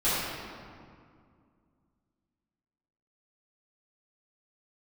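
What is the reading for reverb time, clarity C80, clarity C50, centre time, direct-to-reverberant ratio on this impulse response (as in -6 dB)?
2.2 s, -1.5 dB, -4.0 dB, 0.14 s, -14.5 dB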